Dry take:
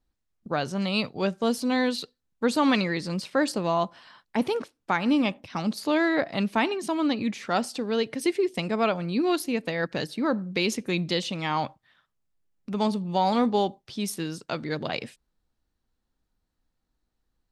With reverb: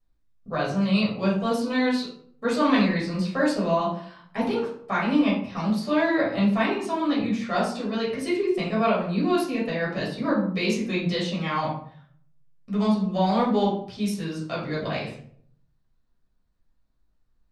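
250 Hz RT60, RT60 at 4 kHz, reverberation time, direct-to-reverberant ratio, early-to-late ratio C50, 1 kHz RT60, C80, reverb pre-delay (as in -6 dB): 0.70 s, 0.35 s, 0.60 s, -7.5 dB, 5.0 dB, 0.55 s, 8.5 dB, 7 ms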